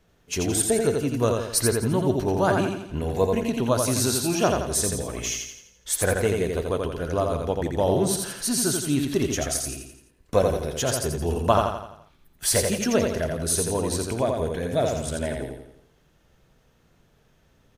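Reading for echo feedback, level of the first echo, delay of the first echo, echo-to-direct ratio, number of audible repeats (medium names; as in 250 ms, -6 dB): 47%, -4.0 dB, 85 ms, -3.0 dB, 5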